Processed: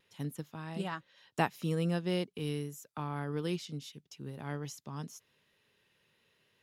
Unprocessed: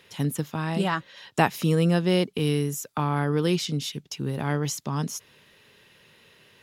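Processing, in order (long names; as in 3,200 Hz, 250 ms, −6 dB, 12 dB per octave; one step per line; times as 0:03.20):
pitch vibrato 0.8 Hz 16 cents
expander for the loud parts 1.5 to 1, over −32 dBFS
level −8.5 dB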